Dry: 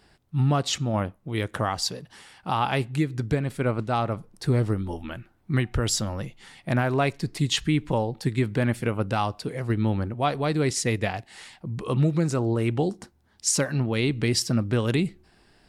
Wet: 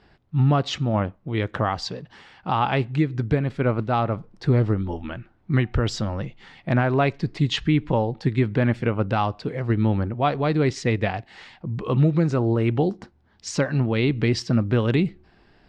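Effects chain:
high-frequency loss of the air 180 metres
level +3.5 dB

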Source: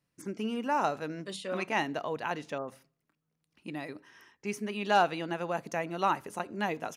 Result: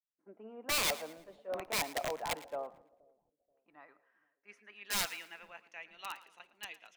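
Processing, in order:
band-pass filter sweep 700 Hz → 3,000 Hz, 0:02.49–0:05.98
wrap-around overflow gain 29.5 dB
echo with a time of its own for lows and highs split 650 Hz, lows 479 ms, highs 112 ms, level −15.5 dB
multiband upward and downward expander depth 70%

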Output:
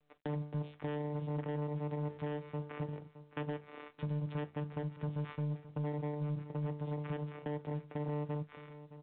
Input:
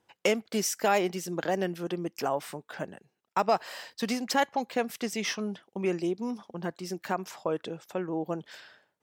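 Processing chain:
low-pass filter 1,300 Hz 6 dB per octave
mains-hum notches 60/120/180/240/300/360/420 Hz
channel vocoder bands 4, saw 148 Hz
downward compressor 6 to 1, threshold −39 dBFS, peak gain reduction 15.5 dB
leveller curve on the samples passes 3
repeating echo 617 ms, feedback 19%, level −15 dB
on a send at −10.5 dB: convolution reverb, pre-delay 3 ms
on the sum: level −5.5 dB
mu-law 64 kbit/s 8,000 Hz

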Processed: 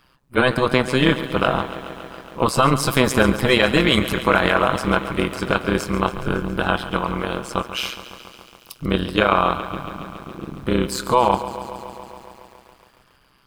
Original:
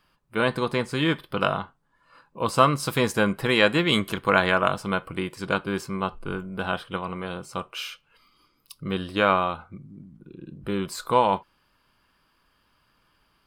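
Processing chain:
amplitude modulation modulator 130 Hz, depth 80%
boost into a limiter +14 dB
feedback echo at a low word length 139 ms, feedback 80%, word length 7 bits, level −14 dB
level −2.5 dB

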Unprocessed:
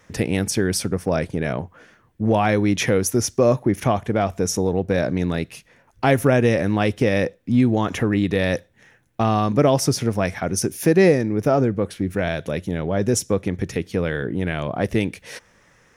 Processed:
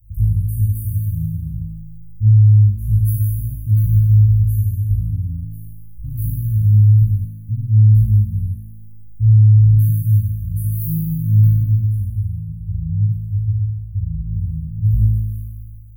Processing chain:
0:11.99–0:14.17: harmonic-percussive split with one part muted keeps harmonic
inverse Chebyshev band-stop filter 420–5,600 Hz, stop band 80 dB
flutter between parallel walls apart 3.2 metres, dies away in 1.5 s
boost into a limiter +22.5 dB
level −4 dB

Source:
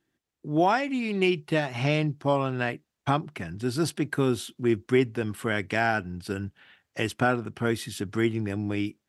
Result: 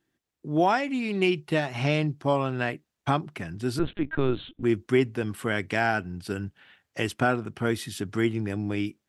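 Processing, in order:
0:03.79–0:04.63: linear-prediction vocoder at 8 kHz pitch kept

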